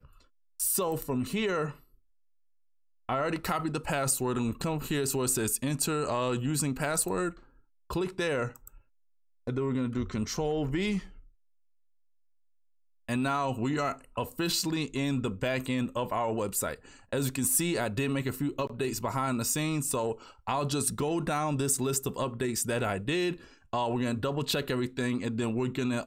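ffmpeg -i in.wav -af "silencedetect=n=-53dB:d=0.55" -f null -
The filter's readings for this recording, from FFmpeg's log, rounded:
silence_start: 1.95
silence_end: 3.09 | silence_duration: 1.14
silence_start: 8.80
silence_end: 9.47 | silence_duration: 0.67
silence_start: 11.29
silence_end: 13.09 | silence_duration: 1.80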